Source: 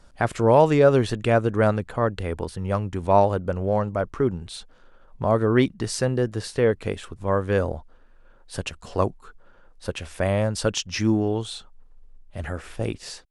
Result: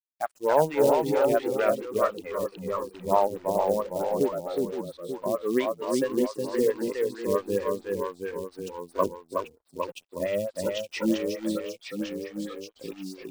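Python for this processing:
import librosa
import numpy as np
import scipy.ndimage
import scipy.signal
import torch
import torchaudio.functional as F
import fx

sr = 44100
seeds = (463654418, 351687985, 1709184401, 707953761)

p1 = fx.noise_reduce_blind(x, sr, reduce_db=28)
p2 = scipy.signal.sosfilt(scipy.signal.butter(2, 150.0, 'highpass', fs=sr, output='sos'), p1)
p3 = fx.high_shelf(p2, sr, hz=5600.0, db=-5.5)
p4 = fx.rider(p3, sr, range_db=4, speed_s=0.5)
p5 = p3 + F.gain(torch.from_numpy(p4), 1.5).numpy()
p6 = np.sign(p5) * np.maximum(np.abs(p5) - 10.0 ** (-39.5 / 20.0), 0.0)
p7 = fx.echo_pitch(p6, sr, ms=272, semitones=-1, count=2, db_per_echo=-6.0)
p8 = fx.quant_float(p7, sr, bits=2)
p9 = p8 + fx.echo_single(p8, sr, ms=367, db=-4.0, dry=0)
p10 = fx.stagger_phaser(p9, sr, hz=4.5)
y = F.gain(torch.from_numpy(p10), -8.5).numpy()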